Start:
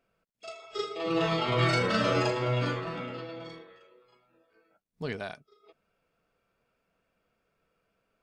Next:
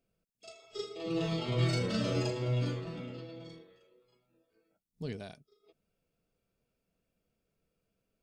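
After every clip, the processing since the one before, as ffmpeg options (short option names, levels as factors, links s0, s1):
-af "equalizer=f=1300:t=o:w=2.5:g=-15"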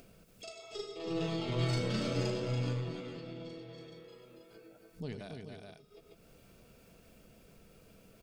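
-af "aecho=1:1:95|283|425:0.316|0.422|0.266,aeval=exprs='0.141*(cos(1*acos(clip(val(0)/0.141,-1,1)))-cos(1*PI/2))+0.00501*(cos(8*acos(clip(val(0)/0.141,-1,1)))-cos(8*PI/2))':c=same,acompressor=mode=upward:threshold=0.0158:ratio=2.5,volume=0.708"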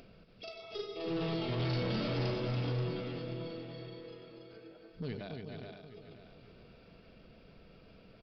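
-af "aresample=11025,asoftclip=type=hard:threshold=0.0224,aresample=44100,aecho=1:1:531|1062|1593|2124:0.299|0.0985|0.0325|0.0107,volume=1.26"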